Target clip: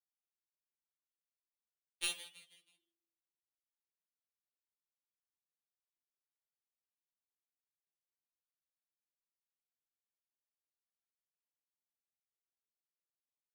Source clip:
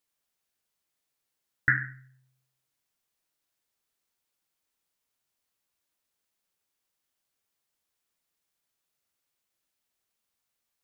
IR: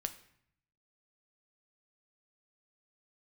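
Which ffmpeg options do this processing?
-filter_complex "[0:a]acrossover=split=140|250|790[s0][s1][s2][s3];[s0]flanger=delay=8.1:depth=1.8:regen=-88:speed=0.24:shape=triangular[s4];[s1]acompressor=threshold=0.00224:ratio=6[s5];[s3]acrusher=bits=4:mix=0:aa=0.000001[s6];[s4][s5][s2][s6]amix=inputs=4:normalize=0,asetrate=80880,aresample=44100,atempo=0.545254,aeval=exprs='0.376*(cos(1*acos(clip(val(0)/0.376,-1,1)))-cos(1*PI/2))+0.168*(cos(3*acos(clip(val(0)/0.376,-1,1)))-cos(3*PI/2))+0.015*(cos(5*acos(clip(val(0)/0.376,-1,1)))-cos(5*PI/2))':c=same,atempo=0.8,flanger=delay=7.2:depth=6.7:regen=-70:speed=1.9:shape=triangular,asplit=5[s7][s8][s9][s10][s11];[s8]adelay=161,afreqshift=32,volume=0.15[s12];[s9]adelay=322,afreqshift=64,volume=0.0661[s13];[s10]adelay=483,afreqshift=96,volume=0.0288[s14];[s11]adelay=644,afreqshift=128,volume=0.0127[s15];[s7][s12][s13][s14][s15]amix=inputs=5:normalize=0,afftfilt=real='re*2.83*eq(mod(b,8),0)':imag='im*2.83*eq(mod(b,8),0)':win_size=2048:overlap=0.75,volume=1.41"

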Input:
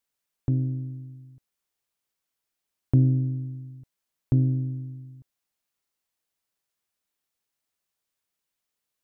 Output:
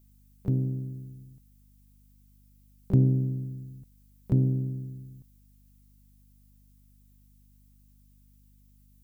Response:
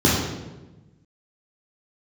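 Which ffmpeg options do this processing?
-filter_complex "[0:a]aemphasis=mode=production:type=75kf,asplit=2[s0][s1];[s1]asetrate=66075,aresample=44100,atempo=0.66742,volume=0.224[s2];[s0][s2]amix=inputs=2:normalize=0,aeval=exprs='val(0)+0.00158*(sin(2*PI*50*n/s)+sin(2*PI*2*50*n/s)/2+sin(2*PI*3*50*n/s)/3+sin(2*PI*4*50*n/s)/4+sin(2*PI*5*50*n/s)/5)':c=same,volume=0.794"

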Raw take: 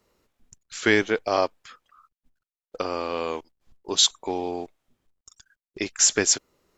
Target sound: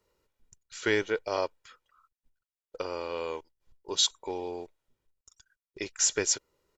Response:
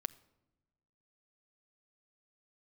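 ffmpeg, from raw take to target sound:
-af "aecho=1:1:2.1:0.44,volume=0.422"

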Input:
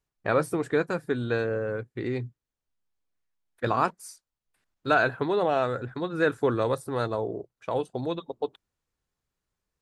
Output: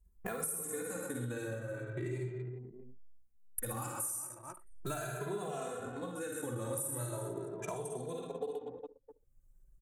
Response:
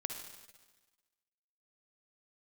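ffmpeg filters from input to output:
-filter_complex "[0:a]acompressor=mode=upward:threshold=0.02:ratio=2.5,highshelf=f=10000:g=4,aecho=1:1:50|125|237.5|406.2|659.4:0.631|0.398|0.251|0.158|0.1[s0];[1:a]atrim=start_sample=2205,atrim=end_sample=6174,asetrate=43659,aresample=44100[s1];[s0][s1]afir=irnorm=-1:irlink=0,acrossover=split=180|2900[s2][s3][s4];[s3]alimiter=limit=0.119:level=0:latency=1:release=347[s5];[s2][s5][s4]amix=inputs=3:normalize=0,adynamicequalizer=threshold=0.00891:dfrequency=150:dqfactor=0.83:tfrequency=150:tqfactor=0.83:attack=5:release=100:ratio=0.375:range=2:mode=boostabove:tftype=bell,anlmdn=0.1,aexciter=amount=12.8:drive=8.6:freq=6800,acompressor=threshold=0.0158:ratio=6,asplit=2[s6][s7];[s7]adelay=2.5,afreqshift=0.38[s8];[s6][s8]amix=inputs=2:normalize=1,volume=1.26"

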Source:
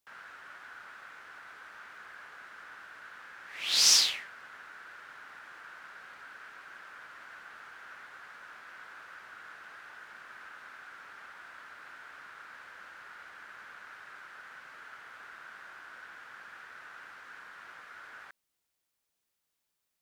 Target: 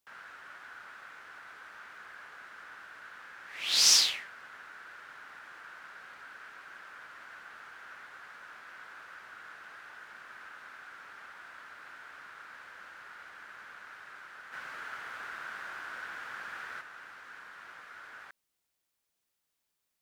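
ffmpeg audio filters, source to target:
-filter_complex "[0:a]asplit=3[s0][s1][s2];[s0]afade=t=out:st=14.52:d=0.02[s3];[s1]acontrast=75,afade=t=in:st=14.52:d=0.02,afade=t=out:st=16.8:d=0.02[s4];[s2]afade=t=in:st=16.8:d=0.02[s5];[s3][s4][s5]amix=inputs=3:normalize=0"

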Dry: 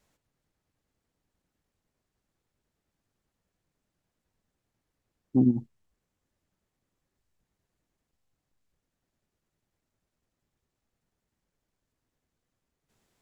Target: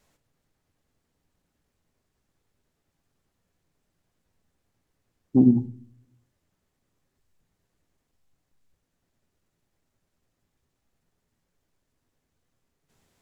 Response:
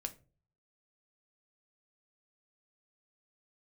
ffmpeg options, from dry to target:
-filter_complex "[0:a]asplit=2[s0][s1];[1:a]atrim=start_sample=2205,asetrate=32193,aresample=44100[s2];[s1][s2]afir=irnorm=-1:irlink=0,volume=1.78[s3];[s0][s3]amix=inputs=2:normalize=0,volume=0.631"

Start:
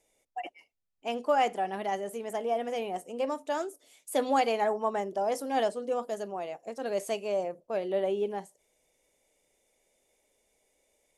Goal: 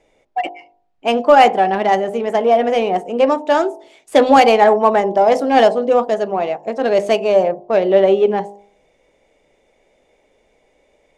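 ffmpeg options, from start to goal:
-af "adynamicsmooth=sensitivity=5:basefreq=3000,bandreject=f=50.58:t=h:w=4,bandreject=f=101.16:t=h:w=4,bandreject=f=151.74:t=h:w=4,bandreject=f=202.32:t=h:w=4,bandreject=f=252.9:t=h:w=4,bandreject=f=303.48:t=h:w=4,bandreject=f=354.06:t=h:w=4,bandreject=f=404.64:t=h:w=4,bandreject=f=455.22:t=h:w=4,bandreject=f=505.8:t=h:w=4,bandreject=f=556.38:t=h:w=4,bandreject=f=606.96:t=h:w=4,bandreject=f=657.54:t=h:w=4,bandreject=f=708.12:t=h:w=4,bandreject=f=758.7:t=h:w=4,bandreject=f=809.28:t=h:w=4,bandreject=f=859.86:t=h:w=4,bandreject=f=910.44:t=h:w=4,bandreject=f=961.02:t=h:w=4,bandreject=f=1011.6:t=h:w=4,bandreject=f=1062.18:t=h:w=4,apsyclip=8.91,volume=0.841"

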